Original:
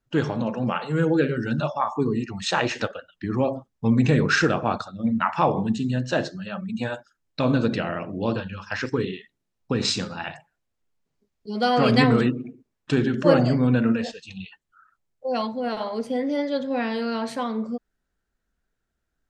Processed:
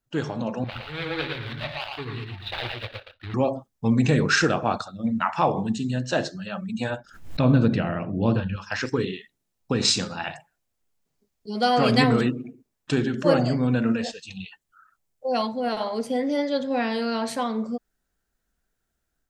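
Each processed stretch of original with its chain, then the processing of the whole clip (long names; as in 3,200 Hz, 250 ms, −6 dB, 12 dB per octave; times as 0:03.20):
0:00.64–0:03.34: running median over 41 samples + drawn EQ curve 110 Hz 0 dB, 180 Hz −20 dB, 1,600 Hz +3 dB, 3,800 Hz +11 dB, 6,600 Hz −18 dB + single-tap delay 114 ms −4 dB
0:06.90–0:08.56: bass and treble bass +9 dB, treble −11 dB + background raised ahead of every attack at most 110 dB per second
whole clip: parametric band 730 Hz +2.5 dB 0.45 octaves; automatic gain control gain up to 5 dB; high-shelf EQ 5,900 Hz +10 dB; level −5 dB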